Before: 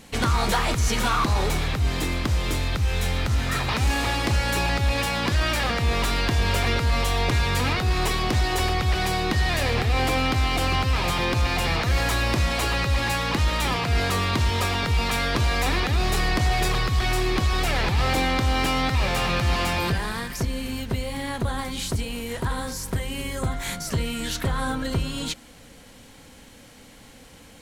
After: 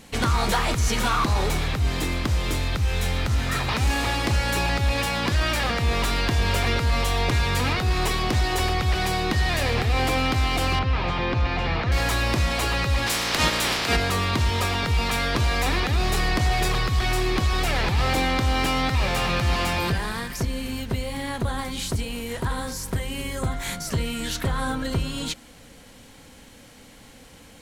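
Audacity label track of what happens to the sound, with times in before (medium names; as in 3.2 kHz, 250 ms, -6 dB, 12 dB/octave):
10.790000	11.920000	distance through air 210 m
13.060000	13.950000	spectral peaks clipped ceiling under each frame's peak by 20 dB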